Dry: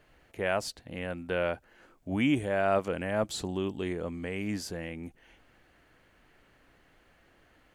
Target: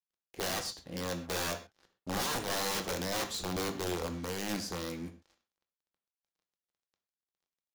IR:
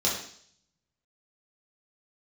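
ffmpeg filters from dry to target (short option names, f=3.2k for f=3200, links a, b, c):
-filter_complex "[0:a]aeval=exprs='(mod(22.4*val(0)+1,2)-1)/22.4':c=same,acrusher=bits=7:mix=0:aa=0.5,asplit=2[a][b];[1:a]atrim=start_sample=2205,atrim=end_sample=6174[c];[b][c]afir=irnorm=-1:irlink=0,volume=-14.5dB[d];[a][d]amix=inputs=2:normalize=0,volume=-3.5dB"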